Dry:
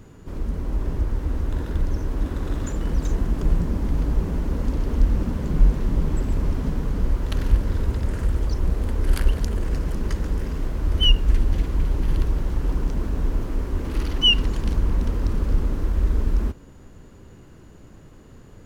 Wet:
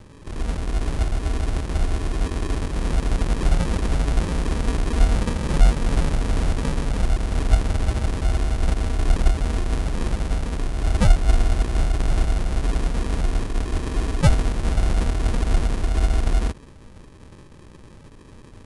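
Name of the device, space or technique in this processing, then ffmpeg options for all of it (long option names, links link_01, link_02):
crushed at another speed: -af "equalizer=frequency=1400:width_type=o:width=1.6:gain=4.5,asetrate=88200,aresample=44100,acrusher=samples=31:mix=1:aa=0.000001,asetrate=22050,aresample=44100,volume=1dB"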